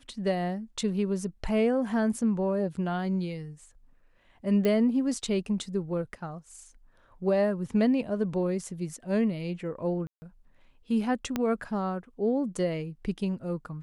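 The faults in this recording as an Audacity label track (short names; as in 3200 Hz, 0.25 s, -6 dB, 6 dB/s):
4.650000	4.650000	pop -16 dBFS
10.070000	10.220000	gap 0.15 s
11.360000	11.360000	pop -14 dBFS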